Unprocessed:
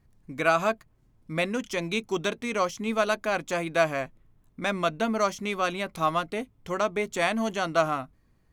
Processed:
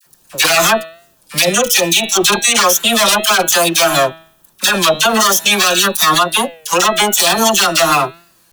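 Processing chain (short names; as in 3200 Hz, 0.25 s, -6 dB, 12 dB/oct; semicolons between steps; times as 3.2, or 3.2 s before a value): minimum comb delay 5.7 ms; bell 2100 Hz -11.5 dB 0.25 oct; dispersion lows, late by 56 ms, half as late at 1000 Hz; spectral noise reduction 9 dB; in parallel at +0.5 dB: compressor, threshold -37 dBFS, peak gain reduction 17 dB; on the sum: tilt +4.5 dB/oct; de-hum 162.4 Hz, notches 26; maximiser +21.5 dB; record warp 33 1/3 rpm, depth 100 cents; gain -1 dB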